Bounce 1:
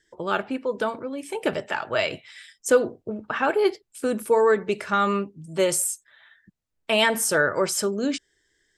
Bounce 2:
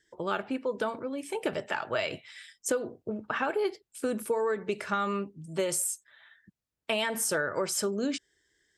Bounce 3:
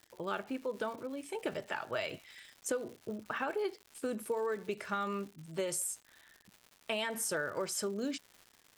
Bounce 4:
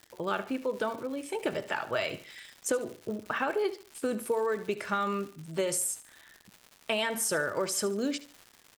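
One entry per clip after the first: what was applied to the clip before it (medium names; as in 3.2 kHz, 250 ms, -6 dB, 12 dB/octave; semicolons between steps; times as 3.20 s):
high-pass 41 Hz; compression 12:1, threshold -22 dBFS, peak gain reduction 10.5 dB; trim -3 dB
crackle 250 per s -39 dBFS; trim -6 dB
feedback delay 73 ms, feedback 34%, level -16 dB; trim +5.5 dB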